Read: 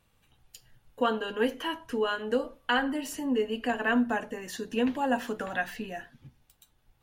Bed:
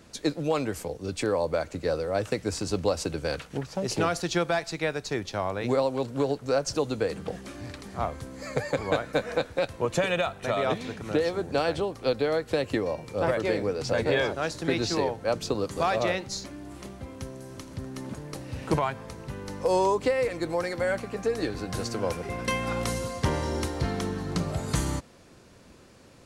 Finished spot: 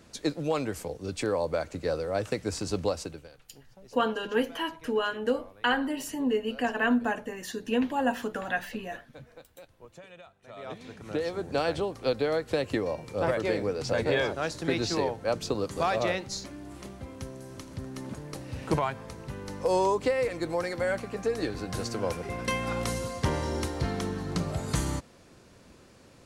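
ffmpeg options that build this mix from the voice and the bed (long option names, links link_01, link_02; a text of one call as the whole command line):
ffmpeg -i stem1.wav -i stem2.wav -filter_complex "[0:a]adelay=2950,volume=0.5dB[link_01];[1:a]volume=20dB,afade=type=out:start_time=2.84:duration=0.45:silence=0.0841395,afade=type=in:start_time=10.45:duration=1.21:silence=0.0794328[link_02];[link_01][link_02]amix=inputs=2:normalize=0" out.wav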